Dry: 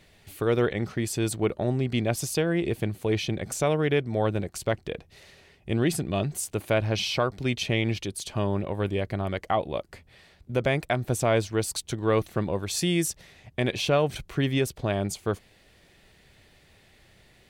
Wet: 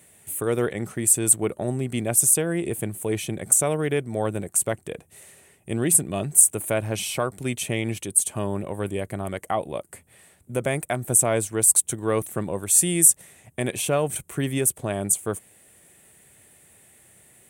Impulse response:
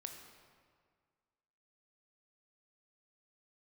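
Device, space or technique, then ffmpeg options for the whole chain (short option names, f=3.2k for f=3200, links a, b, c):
budget condenser microphone: -af "highpass=100,highshelf=f=6.5k:t=q:w=3:g=12.5"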